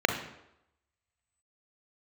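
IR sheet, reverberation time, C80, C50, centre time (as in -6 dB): 0.85 s, 10.5 dB, 8.0 dB, 20 ms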